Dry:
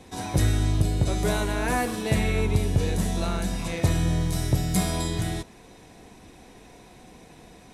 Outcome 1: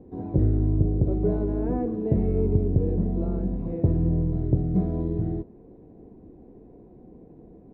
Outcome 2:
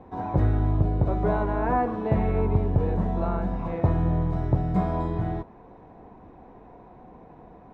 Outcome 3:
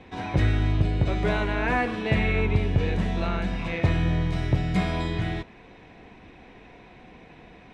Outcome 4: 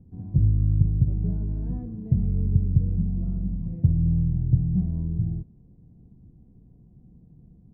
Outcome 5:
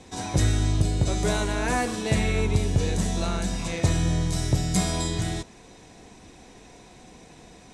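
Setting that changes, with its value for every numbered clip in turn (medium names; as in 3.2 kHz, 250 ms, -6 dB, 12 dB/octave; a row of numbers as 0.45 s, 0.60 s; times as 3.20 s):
resonant low-pass, frequency: 390 Hz, 980 Hz, 2.5 kHz, 150 Hz, 7.4 kHz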